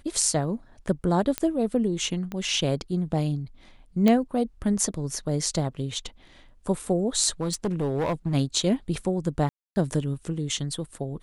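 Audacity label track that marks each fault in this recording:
1.380000	1.380000	click −9 dBFS
2.320000	2.320000	click −20 dBFS
4.080000	4.080000	click −9 dBFS
7.400000	8.350000	clipping −21.5 dBFS
9.490000	9.760000	drop-out 270 ms

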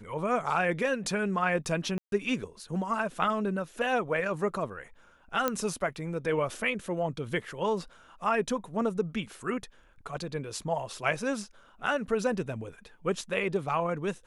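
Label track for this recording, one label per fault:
1.980000	2.120000	drop-out 142 ms
5.480000	5.480000	click −12 dBFS

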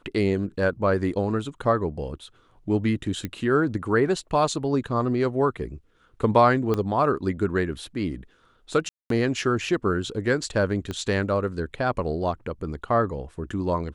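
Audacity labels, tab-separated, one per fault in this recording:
3.250000	3.250000	click −16 dBFS
6.740000	6.740000	click −13 dBFS
8.890000	9.100000	drop-out 213 ms
10.910000	10.910000	click −18 dBFS

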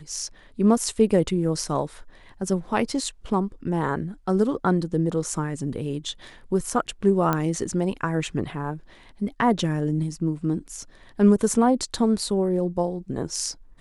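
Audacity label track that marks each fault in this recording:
7.330000	7.330000	click −10 dBFS

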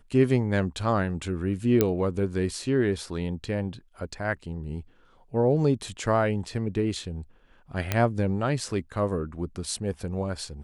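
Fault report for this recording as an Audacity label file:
1.810000	1.810000	click −7 dBFS
7.920000	7.920000	click −9 dBFS

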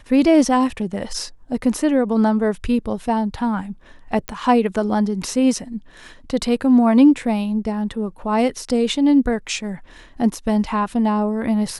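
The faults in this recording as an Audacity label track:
4.280000	4.280000	click −10 dBFS

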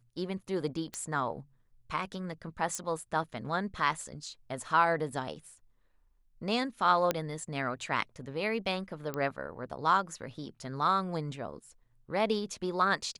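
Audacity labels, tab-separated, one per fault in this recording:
0.940000	0.940000	click −22 dBFS
2.750000	2.750000	click −21 dBFS
7.110000	7.110000	click −13 dBFS
9.140000	9.140000	click −20 dBFS

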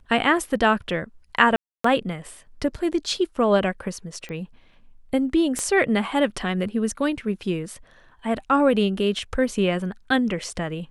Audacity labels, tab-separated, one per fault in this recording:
1.560000	1.840000	drop-out 284 ms
4.290000	4.290000	click −23 dBFS
5.590000	5.590000	click −14 dBFS

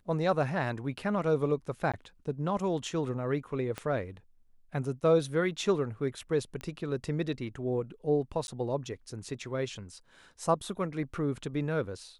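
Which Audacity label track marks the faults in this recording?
1.920000	1.940000	drop-out 16 ms
3.780000	3.780000	click −21 dBFS
6.610000	6.610000	click −25 dBFS
8.470000	8.480000	drop-out 11 ms

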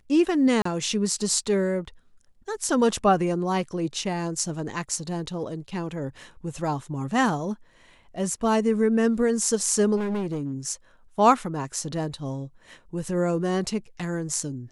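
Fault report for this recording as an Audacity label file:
0.620000	0.650000	drop-out 34 ms
9.960000	10.540000	clipping −24.5 dBFS

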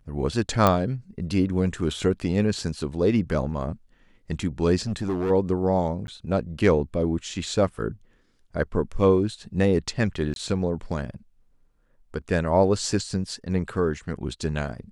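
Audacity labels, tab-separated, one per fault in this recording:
0.670000	0.670000	click −6 dBFS
4.870000	5.310000	clipping −22 dBFS
6.070000	6.080000	drop-out
10.340000	10.360000	drop-out 22 ms

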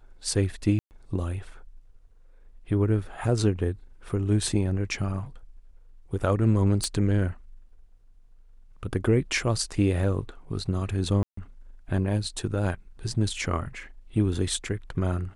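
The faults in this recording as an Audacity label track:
0.790000	0.910000	drop-out 119 ms
6.840000	6.840000	click −14 dBFS
11.230000	11.370000	drop-out 144 ms

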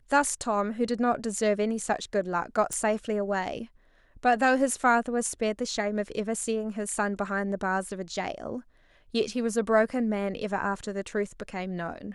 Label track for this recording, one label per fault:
2.730000	2.730000	click −17 dBFS

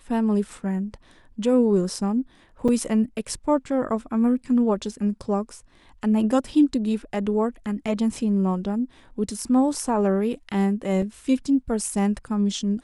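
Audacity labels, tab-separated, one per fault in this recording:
2.680000	2.690000	drop-out 5.5 ms
11.020000	11.020000	drop-out 3.5 ms

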